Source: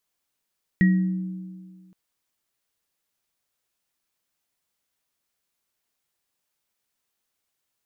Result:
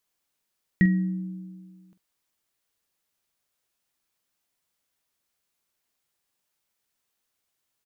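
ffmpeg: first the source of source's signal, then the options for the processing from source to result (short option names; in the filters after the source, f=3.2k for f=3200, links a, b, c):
-f lavfi -i "aevalsrc='0.224*pow(10,-3*t/1.77)*sin(2*PI*185*t)+0.0335*pow(10,-3*t/1.97)*sin(2*PI*317*t)+0.0794*pow(10,-3*t/0.42)*sin(2*PI*1900*t)':d=1.12:s=44100"
-filter_complex "[0:a]asplit=2[a][b];[b]adelay=46,volume=-13dB[c];[a][c]amix=inputs=2:normalize=0"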